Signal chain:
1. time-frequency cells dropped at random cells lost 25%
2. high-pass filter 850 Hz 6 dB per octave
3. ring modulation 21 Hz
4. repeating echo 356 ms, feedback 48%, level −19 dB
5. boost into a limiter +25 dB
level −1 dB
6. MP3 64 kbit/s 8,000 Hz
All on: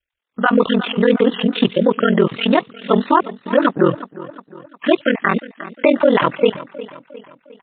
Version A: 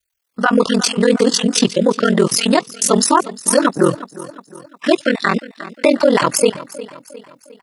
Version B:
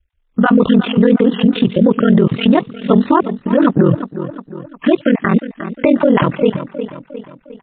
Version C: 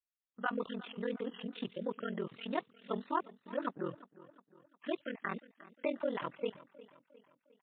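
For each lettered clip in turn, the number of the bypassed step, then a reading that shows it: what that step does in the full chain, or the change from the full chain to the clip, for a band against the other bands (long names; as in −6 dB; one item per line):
6, 4 kHz band +4.5 dB
2, 125 Hz band +9.0 dB
5, change in crest factor +5.0 dB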